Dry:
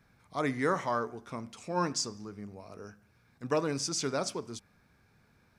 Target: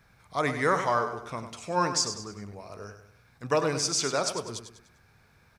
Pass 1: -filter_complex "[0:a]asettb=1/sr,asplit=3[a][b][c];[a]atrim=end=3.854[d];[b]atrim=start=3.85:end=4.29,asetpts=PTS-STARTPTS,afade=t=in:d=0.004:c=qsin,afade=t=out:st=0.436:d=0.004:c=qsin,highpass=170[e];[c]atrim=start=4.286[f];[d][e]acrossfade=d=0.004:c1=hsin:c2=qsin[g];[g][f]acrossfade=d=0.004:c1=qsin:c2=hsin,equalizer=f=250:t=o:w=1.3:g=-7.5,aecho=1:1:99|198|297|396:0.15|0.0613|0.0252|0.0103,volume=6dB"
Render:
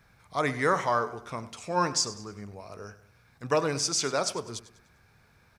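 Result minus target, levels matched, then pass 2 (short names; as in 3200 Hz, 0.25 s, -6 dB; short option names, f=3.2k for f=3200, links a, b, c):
echo-to-direct -7 dB
-filter_complex "[0:a]asettb=1/sr,asplit=3[a][b][c];[a]atrim=end=3.854[d];[b]atrim=start=3.85:end=4.29,asetpts=PTS-STARTPTS,afade=t=in:d=0.004:c=qsin,afade=t=out:st=0.436:d=0.004:c=qsin,highpass=170[e];[c]atrim=start=4.286[f];[d][e]acrossfade=d=0.004:c1=hsin:c2=qsin[g];[g][f]acrossfade=d=0.004:c1=qsin:c2=hsin,equalizer=f=250:t=o:w=1.3:g=-7.5,aecho=1:1:99|198|297|396:0.335|0.137|0.0563|0.0231,volume=6dB"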